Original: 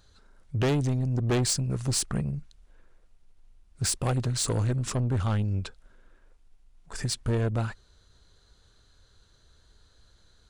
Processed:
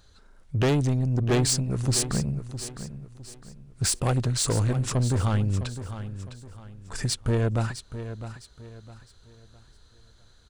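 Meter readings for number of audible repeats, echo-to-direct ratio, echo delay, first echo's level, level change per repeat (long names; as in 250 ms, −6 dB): 3, −11.0 dB, 658 ms, −11.5 dB, −9.5 dB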